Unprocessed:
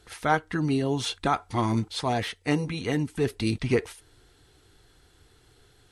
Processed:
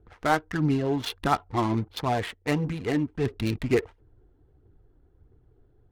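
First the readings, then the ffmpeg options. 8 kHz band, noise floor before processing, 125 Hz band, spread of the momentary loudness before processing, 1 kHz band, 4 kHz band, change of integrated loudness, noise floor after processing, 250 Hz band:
-4.5 dB, -60 dBFS, 0.0 dB, 3 LU, +0.5 dB, -3.0 dB, 0.0 dB, -62 dBFS, +0.5 dB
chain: -af "adynamicsmooth=sensitivity=5.5:basefreq=500,aphaser=in_gain=1:out_gain=1:delay=3.7:decay=0.33:speed=1.5:type=triangular"

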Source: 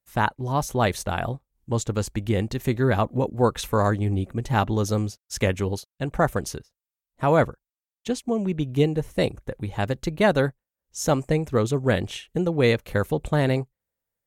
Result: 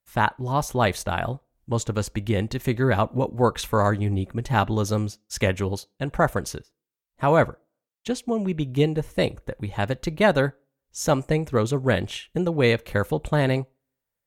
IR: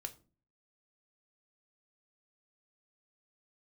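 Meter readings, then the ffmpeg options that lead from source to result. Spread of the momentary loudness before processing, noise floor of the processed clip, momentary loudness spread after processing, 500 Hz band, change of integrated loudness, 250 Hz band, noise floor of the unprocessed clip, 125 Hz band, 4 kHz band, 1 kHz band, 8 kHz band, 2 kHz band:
9 LU, -85 dBFS, 9 LU, 0.0 dB, +0.5 dB, -0.5 dB, under -85 dBFS, 0.0 dB, +1.0 dB, +1.0 dB, -0.5 dB, +2.0 dB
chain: -filter_complex "[0:a]asplit=2[a][b];[b]highpass=570,lowpass=4.9k[c];[1:a]atrim=start_sample=2205[d];[c][d]afir=irnorm=-1:irlink=0,volume=-8dB[e];[a][e]amix=inputs=2:normalize=0"

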